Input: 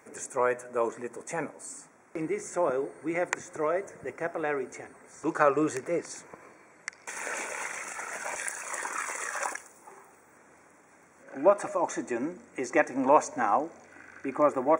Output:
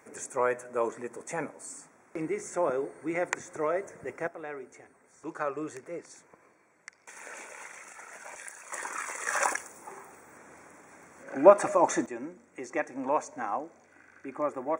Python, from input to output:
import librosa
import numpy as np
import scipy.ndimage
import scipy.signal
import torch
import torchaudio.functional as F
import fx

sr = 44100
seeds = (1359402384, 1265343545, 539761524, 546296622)

y = fx.gain(x, sr, db=fx.steps((0.0, -1.0), (4.28, -9.5), (8.72, -2.5), (9.27, 5.0), (12.06, -7.0)))